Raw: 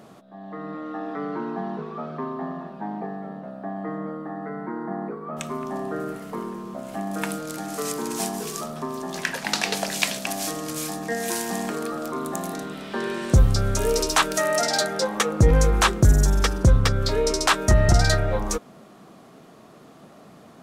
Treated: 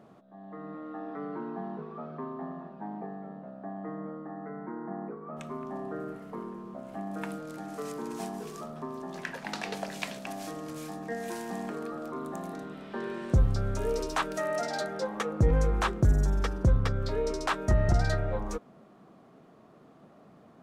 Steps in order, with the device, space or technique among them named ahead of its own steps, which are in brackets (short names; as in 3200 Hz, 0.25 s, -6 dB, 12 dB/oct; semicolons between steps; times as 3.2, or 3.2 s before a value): through cloth (high shelf 3000 Hz -13 dB); gain -7 dB